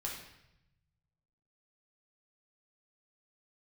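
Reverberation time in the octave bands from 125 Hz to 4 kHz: 2.0, 1.2, 0.85, 0.80, 0.85, 0.80 seconds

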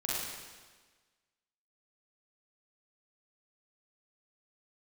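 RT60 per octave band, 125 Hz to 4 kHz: 1.3, 1.4, 1.4, 1.4, 1.4, 1.3 seconds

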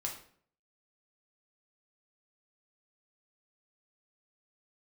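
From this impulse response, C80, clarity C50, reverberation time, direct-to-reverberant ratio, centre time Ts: 11.5 dB, 7.0 dB, 0.55 s, −0.5 dB, 23 ms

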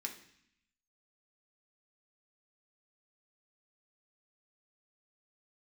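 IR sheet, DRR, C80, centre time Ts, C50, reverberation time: 1.5 dB, 13.0 dB, 15 ms, 10.0 dB, 0.65 s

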